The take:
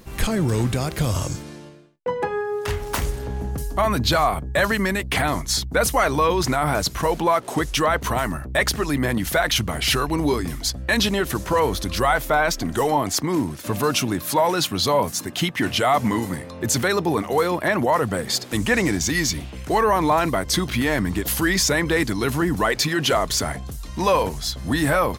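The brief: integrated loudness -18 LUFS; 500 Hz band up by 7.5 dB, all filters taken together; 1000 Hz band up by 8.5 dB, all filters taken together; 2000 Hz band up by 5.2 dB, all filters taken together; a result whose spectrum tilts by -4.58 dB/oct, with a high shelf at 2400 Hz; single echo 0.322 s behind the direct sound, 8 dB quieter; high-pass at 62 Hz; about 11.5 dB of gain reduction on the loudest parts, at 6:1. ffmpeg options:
-af "highpass=62,equalizer=f=500:t=o:g=7,equalizer=f=1k:t=o:g=8,equalizer=f=2k:t=o:g=6,highshelf=f=2.4k:g=-6.5,acompressor=threshold=-19dB:ratio=6,aecho=1:1:322:0.398,volume=5dB"

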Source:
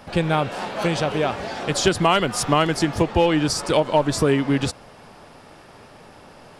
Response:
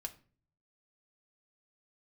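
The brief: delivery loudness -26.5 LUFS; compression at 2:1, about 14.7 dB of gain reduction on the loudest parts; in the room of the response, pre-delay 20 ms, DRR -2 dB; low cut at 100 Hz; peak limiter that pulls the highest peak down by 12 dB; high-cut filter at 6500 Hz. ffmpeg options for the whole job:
-filter_complex "[0:a]highpass=100,lowpass=6.5k,acompressor=threshold=-41dB:ratio=2,alimiter=level_in=5dB:limit=-24dB:level=0:latency=1,volume=-5dB,asplit=2[a][b];[1:a]atrim=start_sample=2205,adelay=20[c];[b][c]afir=irnorm=-1:irlink=0,volume=4.5dB[d];[a][d]amix=inputs=2:normalize=0,volume=9dB"

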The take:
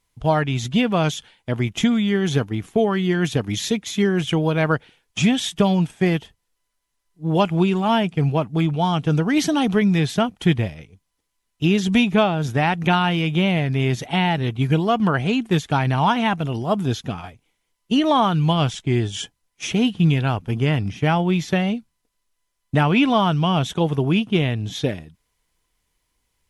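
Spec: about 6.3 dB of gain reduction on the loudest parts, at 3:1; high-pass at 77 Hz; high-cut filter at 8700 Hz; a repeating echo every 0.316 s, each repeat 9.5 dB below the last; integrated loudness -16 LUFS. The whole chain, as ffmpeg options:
-af "highpass=77,lowpass=8.7k,acompressor=threshold=-21dB:ratio=3,aecho=1:1:316|632|948|1264:0.335|0.111|0.0365|0.012,volume=8.5dB"

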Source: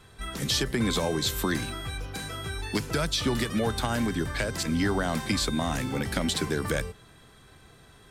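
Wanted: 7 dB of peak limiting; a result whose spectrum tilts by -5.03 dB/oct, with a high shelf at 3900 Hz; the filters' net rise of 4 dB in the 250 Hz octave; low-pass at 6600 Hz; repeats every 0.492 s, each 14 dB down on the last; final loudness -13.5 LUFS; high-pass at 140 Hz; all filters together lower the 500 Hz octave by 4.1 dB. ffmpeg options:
-af "highpass=140,lowpass=6.6k,equalizer=f=250:t=o:g=7.5,equalizer=f=500:t=o:g=-8.5,highshelf=f=3.9k:g=-5.5,alimiter=limit=-20dB:level=0:latency=1,aecho=1:1:492|984:0.2|0.0399,volume=16.5dB"

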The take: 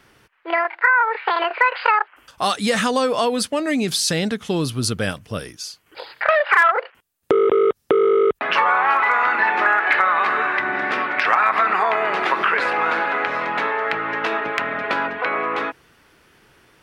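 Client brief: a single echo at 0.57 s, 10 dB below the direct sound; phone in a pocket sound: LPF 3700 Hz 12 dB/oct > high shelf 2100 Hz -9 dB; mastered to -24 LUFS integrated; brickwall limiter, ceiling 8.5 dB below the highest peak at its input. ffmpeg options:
-af "alimiter=limit=-12dB:level=0:latency=1,lowpass=3.7k,highshelf=f=2.1k:g=-9,aecho=1:1:570:0.316,volume=-1dB"

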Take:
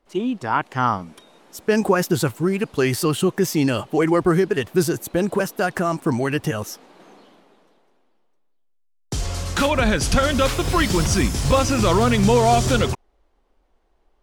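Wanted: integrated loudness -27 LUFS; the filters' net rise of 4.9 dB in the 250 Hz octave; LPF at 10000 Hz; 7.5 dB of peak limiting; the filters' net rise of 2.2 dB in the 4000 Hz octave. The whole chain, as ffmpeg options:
-af "lowpass=10k,equalizer=f=250:t=o:g=6.5,equalizer=f=4k:t=o:g=3,volume=-6dB,alimiter=limit=-17dB:level=0:latency=1"

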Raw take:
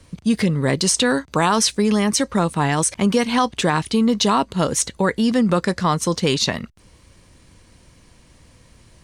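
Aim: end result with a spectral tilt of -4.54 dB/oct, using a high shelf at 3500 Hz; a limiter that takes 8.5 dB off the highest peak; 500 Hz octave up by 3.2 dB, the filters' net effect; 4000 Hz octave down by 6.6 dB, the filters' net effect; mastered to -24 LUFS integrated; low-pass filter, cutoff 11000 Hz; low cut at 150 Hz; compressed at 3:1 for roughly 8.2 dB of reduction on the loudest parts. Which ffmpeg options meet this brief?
-af "highpass=150,lowpass=11k,equalizer=f=500:t=o:g=4,highshelf=f=3.5k:g=-5.5,equalizer=f=4k:t=o:g=-4.5,acompressor=threshold=-23dB:ratio=3,volume=4.5dB,alimiter=limit=-13dB:level=0:latency=1"

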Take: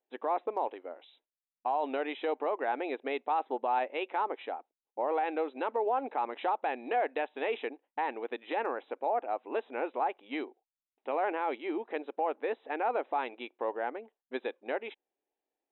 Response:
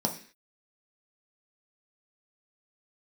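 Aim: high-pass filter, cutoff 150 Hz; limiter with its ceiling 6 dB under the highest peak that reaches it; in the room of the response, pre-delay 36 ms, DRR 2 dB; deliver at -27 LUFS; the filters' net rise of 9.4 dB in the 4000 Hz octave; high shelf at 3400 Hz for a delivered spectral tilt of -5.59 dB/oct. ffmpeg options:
-filter_complex "[0:a]highpass=150,highshelf=f=3.4k:g=9,equalizer=f=4k:t=o:g=7,alimiter=limit=-23.5dB:level=0:latency=1,asplit=2[a][b];[1:a]atrim=start_sample=2205,adelay=36[c];[b][c]afir=irnorm=-1:irlink=0,volume=-9.5dB[d];[a][d]amix=inputs=2:normalize=0,volume=5dB"

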